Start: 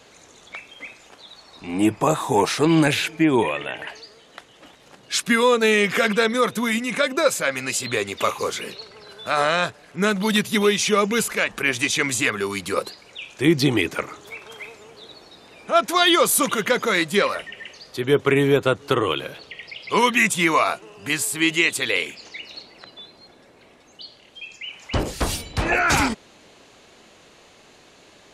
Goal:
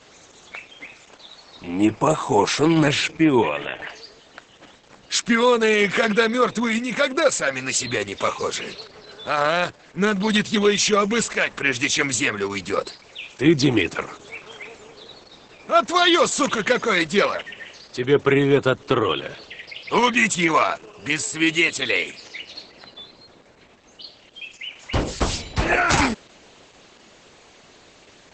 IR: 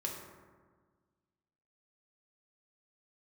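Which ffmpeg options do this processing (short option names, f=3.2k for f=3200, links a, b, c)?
-af "volume=1.5dB" -ar 48000 -c:a libopus -b:a 10k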